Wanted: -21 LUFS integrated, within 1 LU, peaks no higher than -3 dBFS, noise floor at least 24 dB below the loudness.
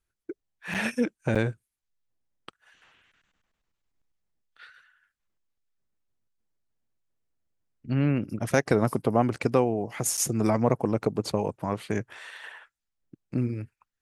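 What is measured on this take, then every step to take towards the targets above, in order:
dropouts 3; longest dropout 6.6 ms; loudness -27.0 LUFS; peak -7.0 dBFS; loudness target -21.0 LUFS
-> interpolate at 0.74/1.35/10.17, 6.6 ms; gain +6 dB; limiter -3 dBFS

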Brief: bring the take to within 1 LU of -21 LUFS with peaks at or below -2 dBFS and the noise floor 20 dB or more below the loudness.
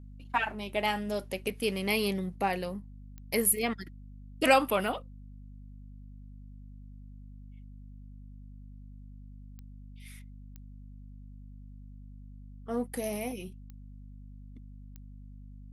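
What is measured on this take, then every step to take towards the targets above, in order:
clicks 7; hum 50 Hz; harmonics up to 250 Hz; hum level -45 dBFS; loudness -30.5 LUFS; peak -10.5 dBFS; loudness target -21.0 LUFS
-> de-click; de-hum 50 Hz, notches 5; gain +9.5 dB; limiter -2 dBFS

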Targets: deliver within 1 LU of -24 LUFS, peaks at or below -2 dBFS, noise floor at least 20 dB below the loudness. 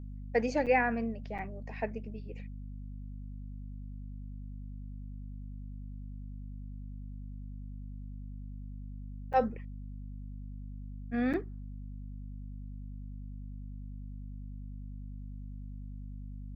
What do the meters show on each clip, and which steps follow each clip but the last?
dropouts 4; longest dropout 7.1 ms; hum 50 Hz; harmonics up to 250 Hz; hum level -40 dBFS; loudness -39.0 LUFS; peak -15.0 dBFS; loudness target -24.0 LUFS
-> interpolate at 0.66/1.38/9.33/11.33, 7.1 ms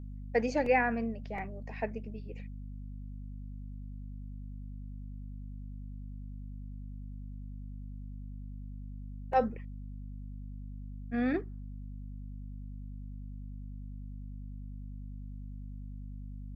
dropouts 0; hum 50 Hz; harmonics up to 250 Hz; hum level -40 dBFS
-> de-hum 50 Hz, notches 5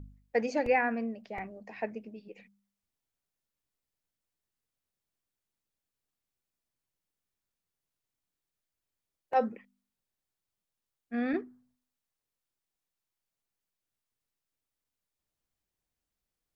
hum none; loudness -32.5 LUFS; peak -15.0 dBFS; loudness target -24.0 LUFS
-> gain +8.5 dB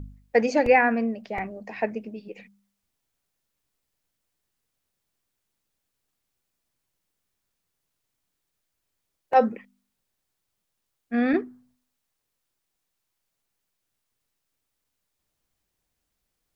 loudness -24.0 LUFS; peak -6.5 dBFS; noise floor -80 dBFS

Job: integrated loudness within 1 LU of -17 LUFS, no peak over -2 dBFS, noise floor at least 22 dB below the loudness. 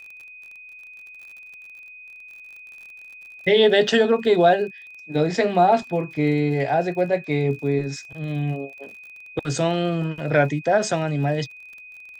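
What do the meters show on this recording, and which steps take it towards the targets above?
ticks 43/s; steady tone 2500 Hz; tone level -40 dBFS; loudness -21.5 LUFS; peak -5.0 dBFS; loudness target -17.0 LUFS
-> de-click; notch 2500 Hz, Q 30; gain +4.5 dB; limiter -2 dBFS

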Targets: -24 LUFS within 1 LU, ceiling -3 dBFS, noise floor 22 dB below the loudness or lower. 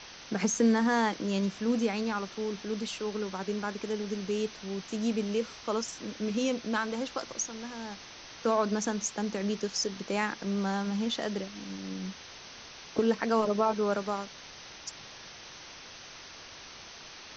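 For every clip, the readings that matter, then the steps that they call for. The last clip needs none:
noise floor -48 dBFS; noise floor target -54 dBFS; loudness -31.5 LUFS; peak -14.5 dBFS; loudness target -24.0 LUFS
-> noise print and reduce 6 dB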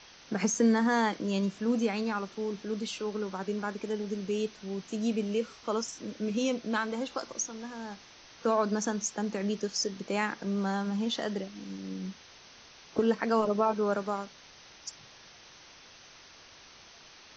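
noise floor -54 dBFS; loudness -31.5 LUFS; peak -15.0 dBFS; loudness target -24.0 LUFS
-> gain +7.5 dB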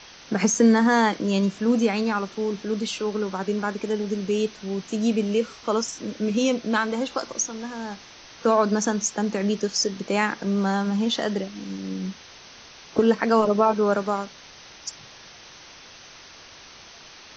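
loudness -24.0 LUFS; peak -7.5 dBFS; noise floor -46 dBFS

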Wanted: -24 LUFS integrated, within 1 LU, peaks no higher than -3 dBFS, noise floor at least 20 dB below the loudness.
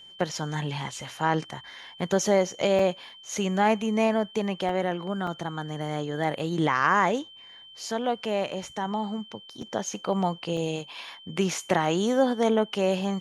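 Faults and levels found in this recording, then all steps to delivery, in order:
dropouts 5; longest dropout 3.2 ms; steady tone 3100 Hz; tone level -46 dBFS; loudness -27.0 LUFS; peak -8.5 dBFS; loudness target -24.0 LUFS
-> interpolate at 2.79/4.69/5.27/9.62/10.57, 3.2 ms; notch 3100 Hz, Q 30; gain +3 dB

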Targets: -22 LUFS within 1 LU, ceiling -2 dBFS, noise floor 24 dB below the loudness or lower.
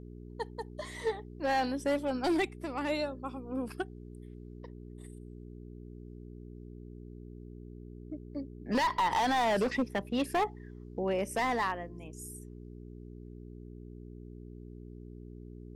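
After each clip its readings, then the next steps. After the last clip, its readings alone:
clipped 1.2%; flat tops at -24.0 dBFS; hum 60 Hz; harmonics up to 420 Hz; hum level -44 dBFS; loudness -33.0 LUFS; peak -24.0 dBFS; loudness target -22.0 LUFS
-> clip repair -24 dBFS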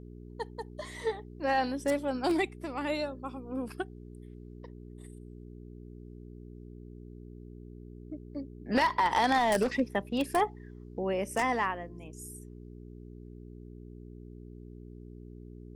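clipped 0.0%; hum 60 Hz; harmonics up to 420 Hz; hum level -44 dBFS
-> de-hum 60 Hz, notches 7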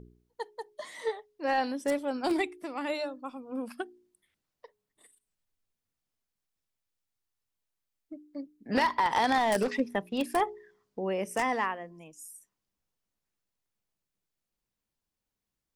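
hum none; loudness -31.0 LUFS; peak -14.0 dBFS; loudness target -22.0 LUFS
-> gain +9 dB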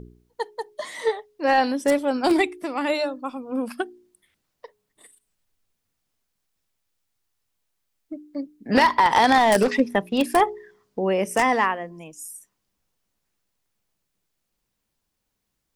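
loudness -22.0 LUFS; peak -5.0 dBFS; noise floor -78 dBFS

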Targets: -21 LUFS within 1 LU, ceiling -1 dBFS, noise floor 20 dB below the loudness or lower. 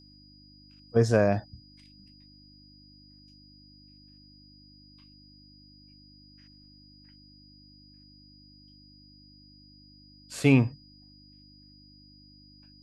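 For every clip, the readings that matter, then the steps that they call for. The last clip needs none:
hum 50 Hz; harmonics up to 300 Hz; hum level -54 dBFS; steady tone 4900 Hz; tone level -56 dBFS; loudness -25.0 LUFS; peak -8.5 dBFS; loudness target -21.0 LUFS
-> de-hum 50 Hz, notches 6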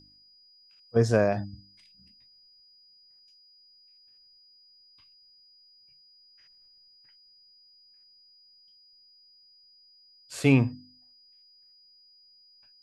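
hum none; steady tone 4900 Hz; tone level -56 dBFS
-> notch 4900 Hz, Q 30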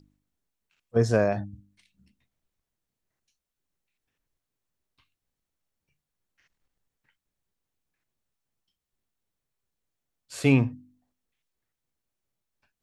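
steady tone none; loudness -25.0 LUFS; peak -9.0 dBFS; loudness target -21.0 LUFS
-> gain +4 dB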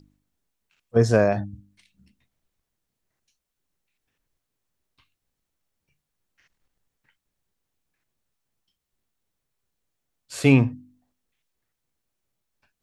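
loudness -21.0 LUFS; peak -5.0 dBFS; noise floor -83 dBFS

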